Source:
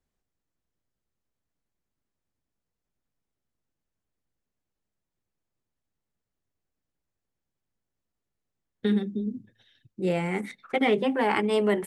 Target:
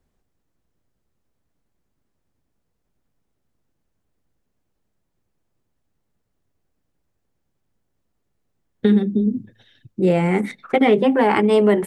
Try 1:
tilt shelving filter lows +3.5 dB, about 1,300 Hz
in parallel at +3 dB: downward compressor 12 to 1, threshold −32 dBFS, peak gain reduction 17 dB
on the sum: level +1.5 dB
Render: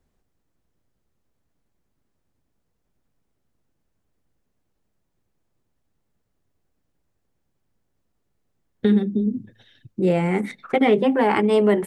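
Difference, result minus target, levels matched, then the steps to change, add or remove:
downward compressor: peak gain reduction +7.5 dB
change: downward compressor 12 to 1, threshold −24 dBFS, peak gain reduction 9.5 dB

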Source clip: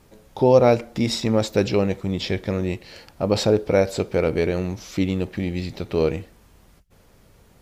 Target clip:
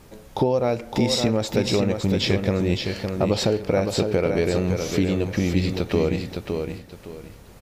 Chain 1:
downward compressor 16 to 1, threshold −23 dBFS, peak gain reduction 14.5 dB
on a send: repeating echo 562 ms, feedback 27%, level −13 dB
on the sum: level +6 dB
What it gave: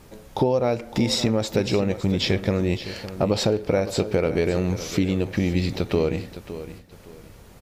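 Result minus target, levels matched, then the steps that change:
echo-to-direct −7.5 dB
change: repeating echo 562 ms, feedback 27%, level −5.5 dB

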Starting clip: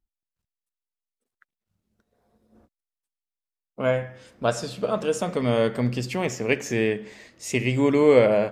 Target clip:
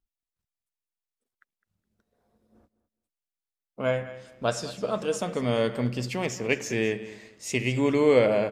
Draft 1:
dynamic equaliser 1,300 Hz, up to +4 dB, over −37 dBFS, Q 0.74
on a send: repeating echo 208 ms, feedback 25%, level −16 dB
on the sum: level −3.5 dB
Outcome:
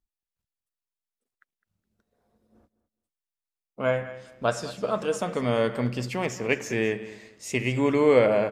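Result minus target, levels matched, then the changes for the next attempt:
4,000 Hz band −2.5 dB
change: dynamic equaliser 4,500 Hz, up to +4 dB, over −37 dBFS, Q 0.74

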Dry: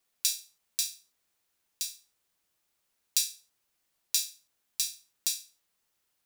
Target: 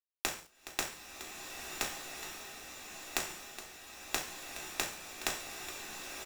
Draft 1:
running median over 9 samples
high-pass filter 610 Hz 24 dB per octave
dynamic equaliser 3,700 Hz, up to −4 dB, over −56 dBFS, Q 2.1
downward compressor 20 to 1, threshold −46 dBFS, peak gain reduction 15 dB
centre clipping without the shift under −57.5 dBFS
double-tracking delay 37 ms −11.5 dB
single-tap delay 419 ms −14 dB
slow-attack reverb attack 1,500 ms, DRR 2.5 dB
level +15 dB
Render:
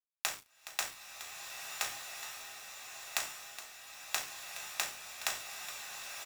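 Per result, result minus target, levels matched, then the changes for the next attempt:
500 Hz band −6.0 dB; centre clipping without the shift: distortion +8 dB
remove: high-pass filter 610 Hz 24 dB per octave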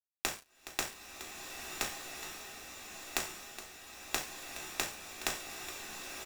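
centre clipping without the shift: distortion +8 dB
change: centre clipping without the shift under −67.5 dBFS

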